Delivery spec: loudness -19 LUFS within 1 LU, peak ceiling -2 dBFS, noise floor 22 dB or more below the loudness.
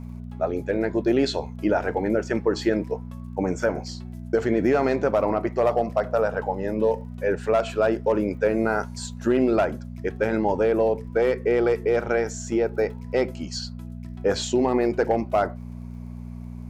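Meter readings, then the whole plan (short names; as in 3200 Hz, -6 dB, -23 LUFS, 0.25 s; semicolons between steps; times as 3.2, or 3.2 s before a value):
ticks 29/s; hum 60 Hz; harmonics up to 240 Hz; hum level -33 dBFS; loudness -24.0 LUFS; peak -10.0 dBFS; loudness target -19.0 LUFS
-> de-click; de-hum 60 Hz, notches 4; gain +5 dB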